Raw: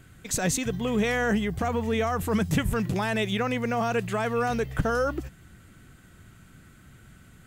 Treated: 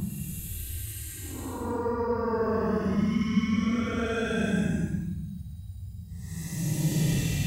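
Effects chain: reverb removal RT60 0.54 s; Paulstretch 21×, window 0.05 s, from 2.20 s; trim -2.5 dB

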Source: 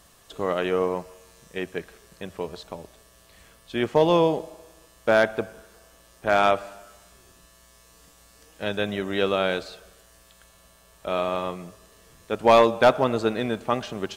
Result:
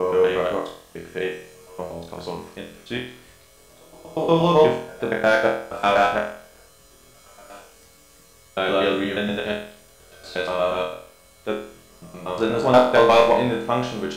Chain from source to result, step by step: slices played last to first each 119 ms, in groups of 8; on a send: flutter echo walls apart 4.1 m, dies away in 0.54 s

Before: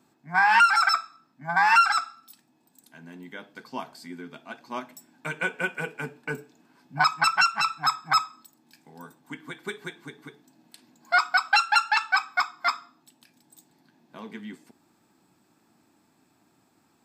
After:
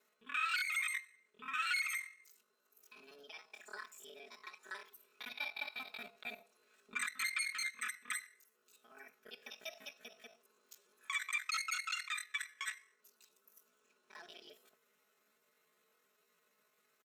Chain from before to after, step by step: time reversed locally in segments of 39 ms; high-pass 180 Hz 6 dB/octave; compression 1.5:1, threshold -43 dBFS, peak gain reduction 10.5 dB; pitch shift +8 st; peaking EQ 330 Hz -10 dB 1.9 oct; comb 4.7 ms, depth 88%; trim -8.5 dB

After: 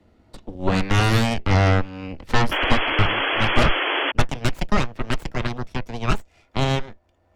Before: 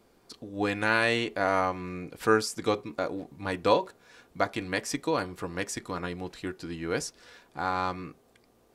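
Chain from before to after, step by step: gliding tape speed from 87% -> 151%; reverberation RT60 0.10 s, pre-delay 3 ms, DRR 11.5 dB; Chebyshev shaper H 3 -13 dB, 8 -7 dB, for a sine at -3 dBFS; tilt EQ -2.5 dB/octave; painted sound noise, 2.51–4.12 s, 270–3400 Hz -18 dBFS; three bands compressed up and down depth 40%; trim -5.5 dB

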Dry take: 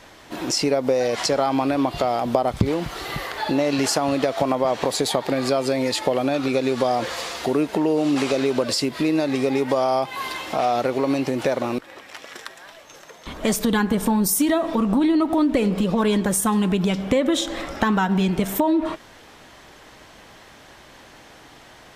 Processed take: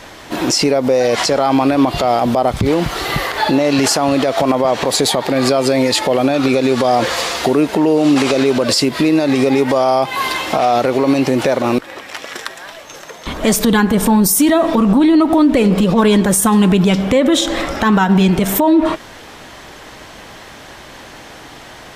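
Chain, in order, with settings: loudness maximiser +14 dB; trim -3.5 dB

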